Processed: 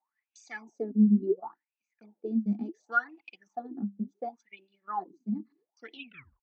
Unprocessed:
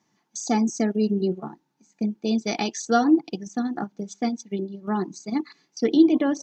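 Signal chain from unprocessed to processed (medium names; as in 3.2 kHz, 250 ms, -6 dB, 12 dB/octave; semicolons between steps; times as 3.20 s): tape stop on the ending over 0.48 s; gate -50 dBFS, range -7 dB; wah-wah 0.7 Hz 200–2700 Hz, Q 14; trim +6 dB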